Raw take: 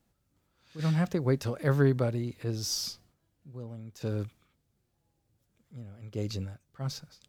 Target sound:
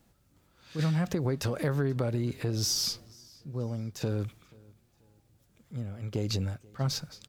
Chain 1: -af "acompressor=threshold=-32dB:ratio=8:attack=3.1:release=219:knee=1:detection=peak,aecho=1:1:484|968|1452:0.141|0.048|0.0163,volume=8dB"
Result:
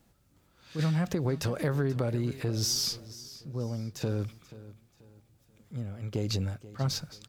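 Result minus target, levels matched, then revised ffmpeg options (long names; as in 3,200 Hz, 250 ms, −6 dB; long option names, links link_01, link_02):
echo-to-direct +8 dB
-af "acompressor=threshold=-32dB:ratio=8:attack=3.1:release=219:knee=1:detection=peak,aecho=1:1:484|968:0.0562|0.0191,volume=8dB"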